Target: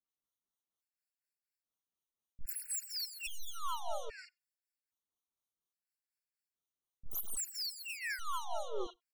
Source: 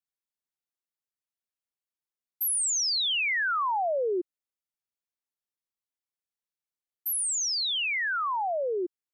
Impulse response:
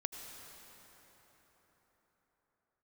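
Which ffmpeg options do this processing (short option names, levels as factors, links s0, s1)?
-filter_complex "[0:a]adynamicequalizer=threshold=0.00631:dfrequency=9800:dqfactor=1.6:tfrequency=9800:tqfactor=1.6:attack=5:release=100:ratio=0.375:range=3.5:mode=cutabove:tftype=bell,aeval=exprs='(tanh(50.1*val(0)+0.65)-tanh(0.65))/50.1':c=same,tremolo=f=4.1:d=0.58,aeval=exprs='0.0316*(cos(1*acos(clip(val(0)/0.0316,-1,1)))-cos(1*PI/2))+0.0158*(cos(2*acos(clip(val(0)/0.0316,-1,1)))-cos(2*PI/2))+0.000794*(cos(3*acos(clip(val(0)/0.0316,-1,1)))-cos(3*PI/2))+0.000355*(cos(5*acos(clip(val(0)/0.0316,-1,1)))-cos(5*PI/2))+0.00447*(cos(6*acos(clip(val(0)/0.0316,-1,1)))-cos(6*PI/2))':c=same,asplit=2[s0][s1];[s1]asetrate=58866,aresample=44100,atempo=0.749154,volume=0.562[s2];[s0][s2]amix=inputs=2:normalize=0,acrossover=split=610|2700[s3][s4][s5];[s4]adelay=40[s6];[s5]adelay=80[s7];[s3][s6][s7]amix=inputs=3:normalize=0,asplit=2[s8][s9];[1:a]atrim=start_sample=2205,atrim=end_sample=4410[s10];[s9][s10]afir=irnorm=-1:irlink=0,volume=0.188[s11];[s8][s11]amix=inputs=2:normalize=0,afftfilt=real='re*gt(sin(2*PI*0.61*pts/sr)*(1-2*mod(floor(b*sr/1024/1400),2)),0)':imag='im*gt(sin(2*PI*0.61*pts/sr)*(1-2*mod(floor(b*sr/1024/1400),2)),0)':win_size=1024:overlap=0.75,volume=1.78"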